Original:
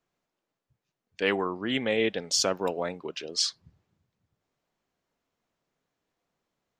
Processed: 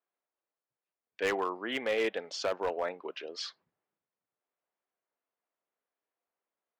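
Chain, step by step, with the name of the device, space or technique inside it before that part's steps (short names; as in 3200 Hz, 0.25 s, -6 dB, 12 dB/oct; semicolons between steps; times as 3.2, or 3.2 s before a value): walkie-talkie (BPF 440–2400 Hz; hard clip -24 dBFS, distortion -14 dB; gate -59 dBFS, range -8 dB)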